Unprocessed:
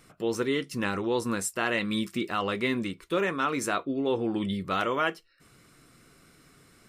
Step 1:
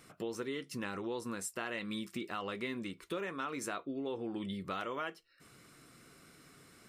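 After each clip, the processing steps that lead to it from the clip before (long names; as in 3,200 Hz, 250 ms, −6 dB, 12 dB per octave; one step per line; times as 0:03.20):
low-shelf EQ 63 Hz −12 dB
downward compressor 3 to 1, threshold −38 dBFS, peak gain reduction 12.5 dB
level −1 dB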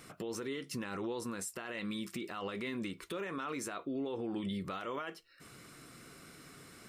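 brickwall limiter −35.5 dBFS, peak gain reduction 11 dB
level +5 dB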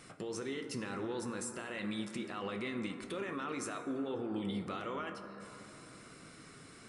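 linear-phase brick-wall low-pass 11,000 Hz
dense smooth reverb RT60 3.4 s, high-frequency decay 0.25×, DRR 6 dB
level −1 dB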